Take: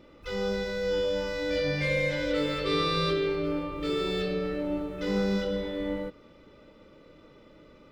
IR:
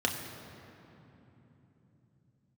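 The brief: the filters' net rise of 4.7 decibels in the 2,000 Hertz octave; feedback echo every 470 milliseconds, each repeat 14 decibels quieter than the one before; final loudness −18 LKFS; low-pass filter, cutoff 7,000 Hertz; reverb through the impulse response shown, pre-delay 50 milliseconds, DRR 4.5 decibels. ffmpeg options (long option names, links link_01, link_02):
-filter_complex "[0:a]lowpass=7000,equalizer=frequency=2000:width_type=o:gain=5.5,aecho=1:1:470|940:0.2|0.0399,asplit=2[link_01][link_02];[1:a]atrim=start_sample=2205,adelay=50[link_03];[link_02][link_03]afir=irnorm=-1:irlink=0,volume=-13dB[link_04];[link_01][link_04]amix=inputs=2:normalize=0,volume=7.5dB"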